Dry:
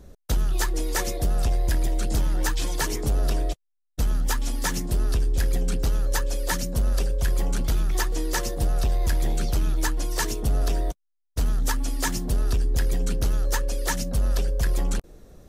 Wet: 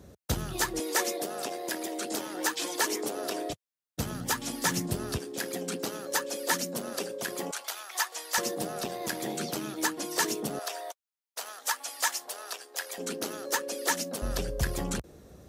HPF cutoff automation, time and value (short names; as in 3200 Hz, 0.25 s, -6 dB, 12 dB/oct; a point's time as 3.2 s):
HPF 24 dB/oct
74 Hz
from 0.8 s 280 Hz
from 3.5 s 99 Hz
from 5.18 s 220 Hz
from 7.51 s 700 Hz
from 8.38 s 190 Hz
from 10.59 s 620 Hz
from 12.98 s 250 Hz
from 14.22 s 62 Hz